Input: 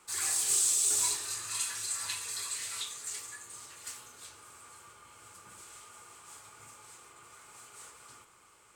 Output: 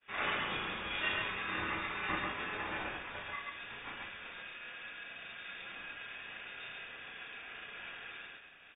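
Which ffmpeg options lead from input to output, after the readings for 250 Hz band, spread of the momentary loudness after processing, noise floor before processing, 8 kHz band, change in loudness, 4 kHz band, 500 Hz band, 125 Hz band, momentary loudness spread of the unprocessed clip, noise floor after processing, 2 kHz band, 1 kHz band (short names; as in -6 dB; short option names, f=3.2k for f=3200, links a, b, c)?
+13.0 dB, 11 LU, -61 dBFS, under -40 dB, -9.5 dB, -3.0 dB, +9.0 dB, +7.5 dB, 25 LU, -54 dBFS, +9.5 dB, +7.0 dB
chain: -filter_complex "[0:a]lowpass=f=2.8k:t=q:w=0.5098,lowpass=f=2.8k:t=q:w=0.6013,lowpass=f=2.8k:t=q:w=0.9,lowpass=f=2.8k:t=q:w=2.563,afreqshift=-3300,aeval=exprs='val(0)*sin(2*PI*450*n/s)':c=same,asplit=2[a][b];[b]aecho=0:1:32.07|137:0.708|0.891[c];[a][c]amix=inputs=2:normalize=0,agate=range=-33dB:threshold=-59dB:ratio=3:detection=peak,volume=8.5dB"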